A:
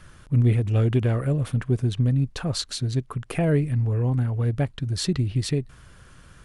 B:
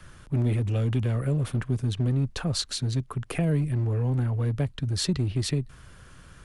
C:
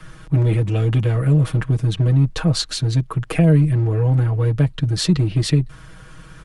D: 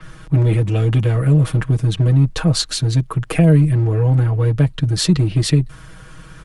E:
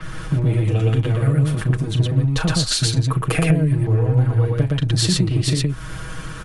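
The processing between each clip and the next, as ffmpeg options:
-filter_complex "[0:a]acrossover=split=250|3000[a][b][c];[b]acompressor=threshold=-32dB:ratio=6[d];[a][d][c]amix=inputs=3:normalize=0,acrossover=split=200|2200[e][f][g];[e]asoftclip=type=hard:threshold=-25dB[h];[h][f][g]amix=inputs=3:normalize=0"
-af "highshelf=f=5.3k:g=-5.5,aecho=1:1:6.3:0.88,volume=6dB"
-af "adynamicequalizer=threshold=0.00891:dfrequency=6700:dqfactor=0.7:tfrequency=6700:tqfactor=0.7:attack=5:release=100:ratio=0.375:range=2:mode=boostabove:tftype=highshelf,volume=2dB"
-filter_complex "[0:a]acompressor=threshold=-23dB:ratio=12,asplit=2[a][b];[b]aecho=0:1:37.9|116.6:0.282|0.891[c];[a][c]amix=inputs=2:normalize=0,volume=6dB"

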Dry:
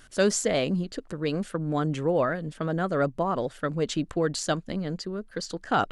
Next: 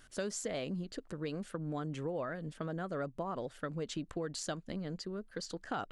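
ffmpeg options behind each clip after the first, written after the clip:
-af "acompressor=threshold=-28dB:ratio=4,volume=-7dB"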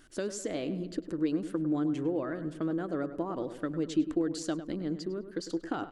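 -filter_complex "[0:a]equalizer=f=320:w=3.2:g=15,asplit=2[a][b];[b]adelay=102,lowpass=f=2.3k:p=1,volume=-11dB,asplit=2[c][d];[d]adelay=102,lowpass=f=2.3k:p=1,volume=0.51,asplit=2[e][f];[f]adelay=102,lowpass=f=2.3k:p=1,volume=0.51,asplit=2[g][h];[h]adelay=102,lowpass=f=2.3k:p=1,volume=0.51,asplit=2[i][j];[j]adelay=102,lowpass=f=2.3k:p=1,volume=0.51[k];[a][c][e][g][i][k]amix=inputs=6:normalize=0"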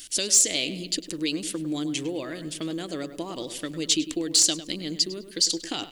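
-af "aexciter=amount=7.7:drive=8.2:freq=2.2k,volume=11.5dB,asoftclip=hard,volume=-11.5dB"

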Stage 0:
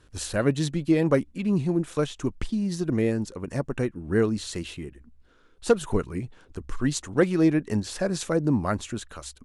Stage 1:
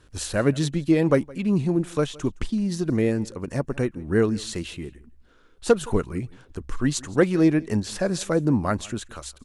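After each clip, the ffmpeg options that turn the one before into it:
-af "aecho=1:1:166:0.0708,volume=2dB"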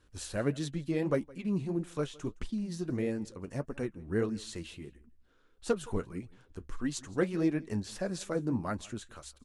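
-af "flanger=delay=3.6:depth=7.3:regen=-53:speed=1.6:shape=sinusoidal,volume=-6.5dB"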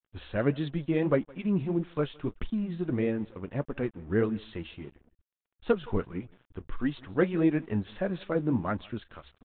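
-af "aeval=exprs='sgn(val(0))*max(abs(val(0))-0.00126,0)':c=same,aresample=8000,aresample=44100,volume=4.5dB"

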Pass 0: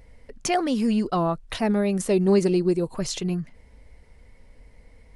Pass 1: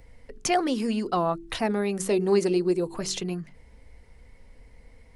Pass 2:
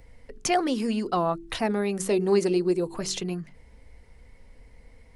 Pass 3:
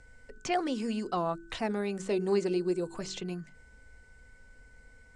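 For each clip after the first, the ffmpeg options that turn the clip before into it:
-filter_complex "[0:a]bandreject=f=600:w=15,bandreject=f=47.88:t=h:w=4,bandreject=f=95.76:t=h:w=4,bandreject=f=143.64:t=h:w=4,bandreject=f=191.52:t=h:w=4,bandreject=f=239.4:t=h:w=4,bandreject=f=287.28:t=h:w=4,bandreject=f=335.16:t=h:w=4,bandreject=f=383.04:t=h:w=4,bandreject=f=430.92:t=h:w=4,acrossover=split=250|5600[a][b][c];[a]acompressor=threshold=-36dB:ratio=6[d];[d][b][c]amix=inputs=3:normalize=0"
-af anull
-filter_complex "[0:a]aeval=exprs='val(0)+0.00224*sin(2*PI*1500*n/s)':c=same,lowpass=f=7.7k:t=q:w=3.8,acrossover=split=4300[a][b];[b]acompressor=threshold=-46dB:ratio=4:attack=1:release=60[c];[a][c]amix=inputs=2:normalize=0,volume=-6dB"

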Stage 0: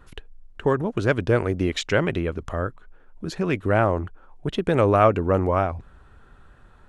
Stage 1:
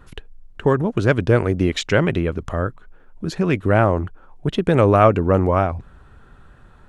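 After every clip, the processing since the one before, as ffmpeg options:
-af "equalizer=f=150:w=0.86:g=3.5,volume=3dB"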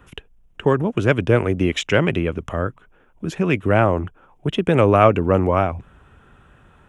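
-filter_complex "[0:a]highpass=f=69:p=1,acrossover=split=210|3500[a][b][c];[b]aexciter=amount=1.6:drive=7.1:freq=2.4k[d];[a][d][c]amix=inputs=3:normalize=0"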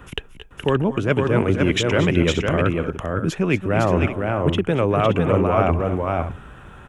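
-af "areverse,acompressor=threshold=-24dB:ratio=5,areverse,aecho=1:1:222|238|508|573:0.141|0.188|0.668|0.237,volume=7.5dB"

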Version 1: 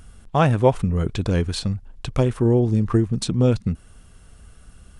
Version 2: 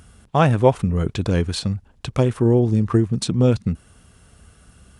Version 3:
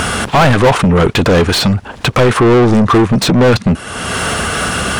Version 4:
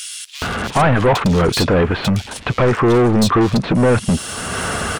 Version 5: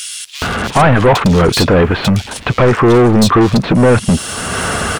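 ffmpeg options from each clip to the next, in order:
-af "highpass=65,volume=1.5dB"
-filter_complex "[0:a]acompressor=mode=upward:threshold=-18dB:ratio=2.5,asplit=2[a][b];[b]highpass=f=720:p=1,volume=36dB,asoftclip=type=tanh:threshold=-1dB[c];[a][c]amix=inputs=2:normalize=0,lowpass=f=2.6k:p=1,volume=-6dB"
-filter_complex "[0:a]acrossover=split=3000[a][b];[a]adelay=420[c];[c][b]amix=inputs=2:normalize=0,volume=-4.5dB"
-af "acrusher=bits=9:mix=0:aa=0.000001,volume=4.5dB"

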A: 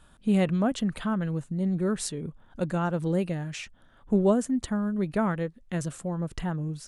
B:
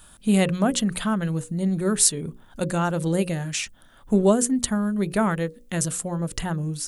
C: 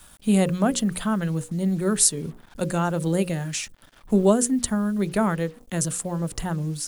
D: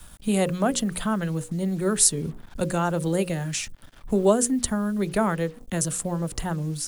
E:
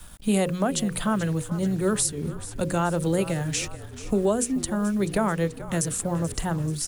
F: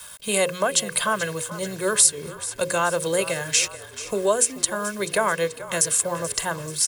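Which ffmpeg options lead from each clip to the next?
-af "aemphasis=mode=production:type=75kf,bandreject=f=60:t=h:w=6,bandreject=f=120:t=h:w=6,bandreject=f=180:t=h:w=6,bandreject=f=240:t=h:w=6,bandreject=f=300:t=h:w=6,bandreject=f=360:t=h:w=6,bandreject=f=420:t=h:w=6,bandreject=f=480:t=h:w=6,bandreject=f=540:t=h:w=6,volume=4dB"
-filter_complex "[0:a]acrossover=split=170|1400|4200[a][b][c][d];[c]alimiter=level_in=4dB:limit=-24dB:level=0:latency=1:release=213,volume=-4dB[e];[a][b][e][d]amix=inputs=4:normalize=0,acrusher=bits=7:mix=0:aa=0.5"
-filter_complex "[0:a]lowshelf=f=200:g=9,acrossover=split=320|1200|5000[a][b][c][d];[a]acompressor=threshold=-29dB:ratio=4[e];[e][b][c][d]amix=inputs=4:normalize=0"
-filter_complex "[0:a]alimiter=limit=-14dB:level=0:latency=1:release=209,asplit=7[a][b][c][d][e][f][g];[b]adelay=434,afreqshift=-40,volume=-15dB[h];[c]adelay=868,afreqshift=-80,volume=-19.9dB[i];[d]adelay=1302,afreqshift=-120,volume=-24.8dB[j];[e]adelay=1736,afreqshift=-160,volume=-29.6dB[k];[f]adelay=2170,afreqshift=-200,volume=-34.5dB[l];[g]adelay=2604,afreqshift=-240,volume=-39.4dB[m];[a][h][i][j][k][l][m]amix=inputs=7:normalize=0,volume=1dB"
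-af "highpass=f=1.1k:p=1,aecho=1:1:1.9:0.55,volume=8dB"

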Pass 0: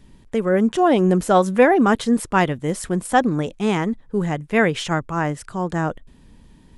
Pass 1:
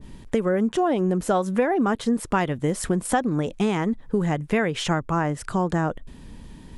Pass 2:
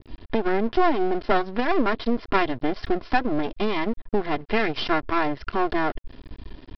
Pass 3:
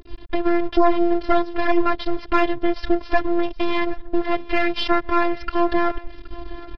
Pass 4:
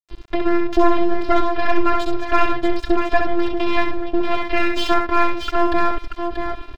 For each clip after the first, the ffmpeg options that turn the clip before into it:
-af "acompressor=threshold=-26dB:ratio=6,adynamicequalizer=threshold=0.00708:dfrequency=1600:dqfactor=0.7:tfrequency=1600:tqfactor=0.7:attack=5:release=100:ratio=0.375:range=2:mode=cutabove:tftype=highshelf,volume=6.5dB"
-af "aecho=1:1:2.9:0.82,aresample=11025,aeval=exprs='max(val(0),0)':c=same,aresample=44100,volume=2.5dB"
-af "aecho=1:1:771|1542:0.0944|0.0236,afftfilt=real='hypot(re,im)*cos(PI*b)':imag='0':win_size=512:overlap=0.75,acontrast=51"
-filter_complex "[0:a]aeval=exprs='sgn(val(0))*max(abs(val(0))-0.0251,0)':c=same,asplit=2[a][b];[b]aecho=0:1:66|634:0.562|0.473[c];[a][c]amix=inputs=2:normalize=0,volume=1.5dB"

